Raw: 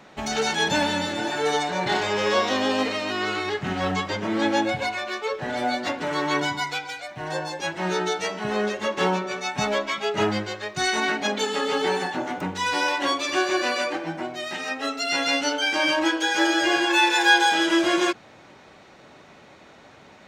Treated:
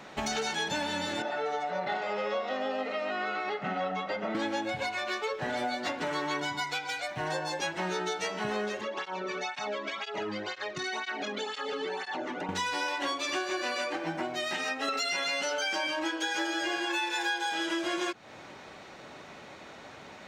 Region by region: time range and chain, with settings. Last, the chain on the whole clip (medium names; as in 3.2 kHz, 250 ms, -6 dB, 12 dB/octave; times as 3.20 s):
1.22–4.35 s: high-pass 200 Hz 24 dB/octave + tape spacing loss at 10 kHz 27 dB + comb 1.5 ms, depth 66%
8.81–12.49 s: low-pass 5.3 kHz + compression, threshold -29 dBFS + cancelling through-zero flanger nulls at 2 Hz, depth 1.5 ms
14.88–15.87 s: comb 5.3 ms, depth 68% + level flattener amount 70%
whole clip: bass shelf 350 Hz -3.5 dB; compression 6:1, threshold -32 dBFS; trim +2.5 dB